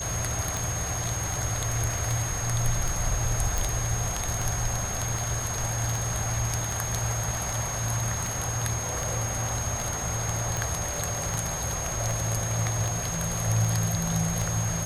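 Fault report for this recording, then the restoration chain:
scratch tick 78 rpm
whistle 6,500 Hz −32 dBFS
0:03.58: click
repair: click removal
notch filter 6,500 Hz, Q 30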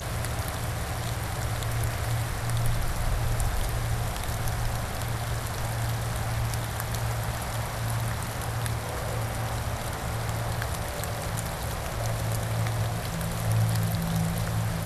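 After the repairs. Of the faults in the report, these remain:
none of them is left

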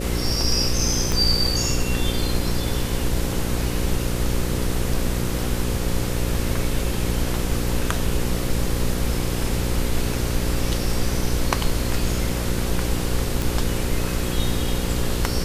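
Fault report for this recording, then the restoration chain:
mains buzz 60 Hz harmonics 9 −26 dBFS
0:01.12: click
0:13.42: click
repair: click removal
hum removal 60 Hz, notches 9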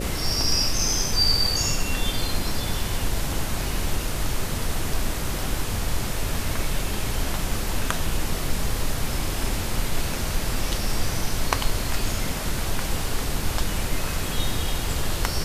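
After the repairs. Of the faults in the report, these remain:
0:01.12: click

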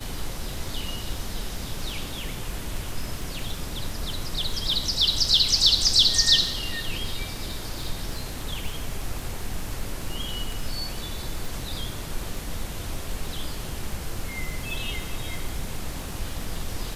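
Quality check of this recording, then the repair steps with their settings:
surface crackle 25 per second −31 dBFS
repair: click removal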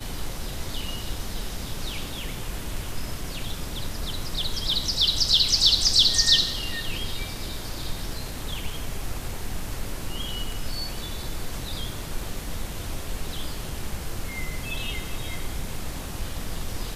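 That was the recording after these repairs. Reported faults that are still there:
none of them is left

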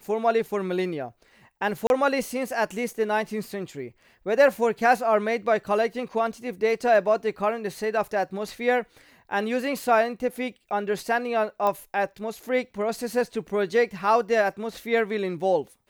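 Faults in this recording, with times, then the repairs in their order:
0:01.87–0:01.90: drop-out 31 ms
0:11.67: click −14 dBFS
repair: click removal
repair the gap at 0:01.87, 31 ms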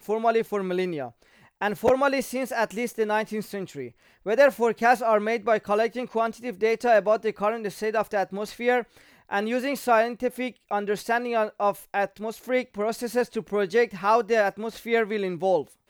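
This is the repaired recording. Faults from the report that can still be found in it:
none of them is left

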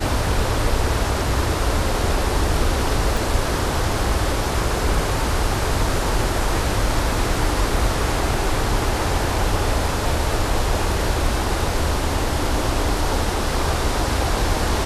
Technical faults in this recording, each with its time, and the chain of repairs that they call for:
0:03.17: click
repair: click removal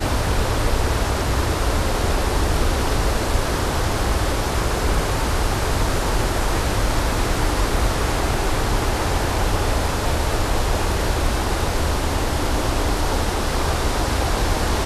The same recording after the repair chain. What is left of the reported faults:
0:03.17: click

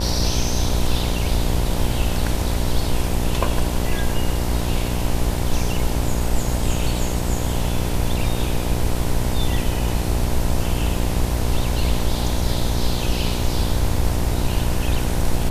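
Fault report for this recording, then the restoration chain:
mains buzz 60 Hz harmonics 17 −24 dBFS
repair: hum removal 60 Hz, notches 17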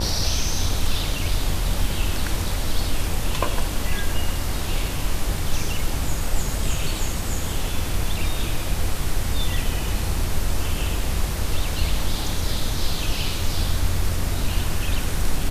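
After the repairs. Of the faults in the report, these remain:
none of them is left

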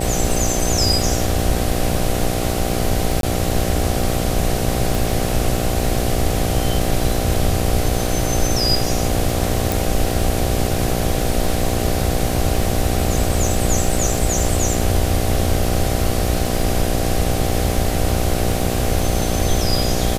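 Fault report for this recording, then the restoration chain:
mains buzz 60 Hz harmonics 13 −23 dBFS
surface crackle 37 per second −24 dBFS
0:03.21–0:03.23: drop-out 22 ms
0:04.95: click
0:09.72: click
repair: click removal
hum removal 60 Hz, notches 13
repair the gap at 0:03.21, 22 ms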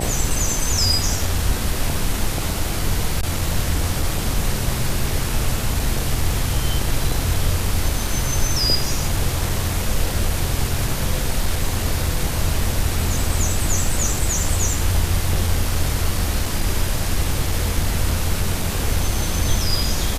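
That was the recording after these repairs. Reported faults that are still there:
none of them is left

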